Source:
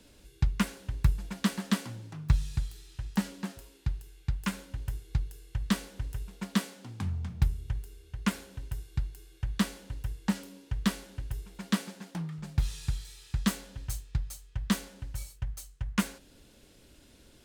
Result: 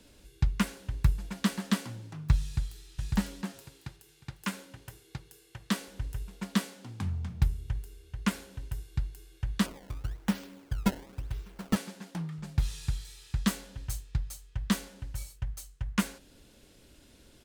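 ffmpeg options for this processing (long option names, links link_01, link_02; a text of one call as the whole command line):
ffmpeg -i in.wav -filter_complex "[0:a]asplit=2[link_01][link_02];[link_02]afade=type=in:start_time=2.43:duration=0.01,afade=type=out:start_time=2.86:duration=0.01,aecho=0:1:550|1100|1650|2200|2750:0.841395|0.336558|0.134623|0.0538493|0.0215397[link_03];[link_01][link_03]amix=inputs=2:normalize=0,asettb=1/sr,asplit=3[link_04][link_05][link_06];[link_04]atrim=end=3.524[link_07];[link_05]atrim=start=3.52:end=5.88,asetpts=PTS-STARTPTS,afade=type=in:duration=0.004:curve=qsin,afade=type=out:start_time=2.356:duration=0.004:curve=qsin,highpass=190[link_08];[link_06]atrim=start=5.876[link_09];[link_07][link_08]acrossfade=duration=0.004:curve1=hsin:curve2=qsin[link_10];[link_10][link_09]acrossfade=duration=0.004:curve1=qsin:curve2=hsin,asettb=1/sr,asplit=3[link_11][link_12][link_13];[link_11]atrim=end=9.664[link_14];[link_12]atrim=start=9.66:end=11.76,asetpts=PTS-STARTPTS,afade=type=in:duration=0.004:curve=qsin,afade=type=out:start_time=2.096:duration=0.004:curve=qsin,acrusher=samples=21:mix=1:aa=0.000001:lfo=1:lforange=33.6:lforate=1[link_15];[link_13]atrim=start=11.756[link_16];[link_14][link_15]acrossfade=duration=0.004:curve1=hsin:curve2=qsin[link_17];[link_17][link_16]acrossfade=duration=0.004:curve1=qsin:curve2=hsin" out.wav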